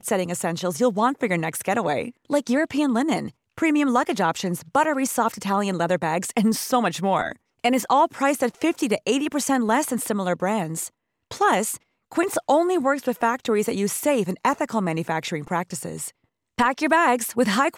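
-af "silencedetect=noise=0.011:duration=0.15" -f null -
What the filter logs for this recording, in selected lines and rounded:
silence_start: 2.11
silence_end: 2.30 | silence_duration: 0.19
silence_start: 3.30
silence_end: 3.58 | silence_duration: 0.28
silence_start: 7.33
silence_end: 7.64 | silence_duration: 0.31
silence_start: 10.88
silence_end: 11.31 | silence_duration: 0.43
silence_start: 11.77
silence_end: 12.12 | silence_duration: 0.35
silence_start: 16.09
silence_end: 16.58 | silence_duration: 0.49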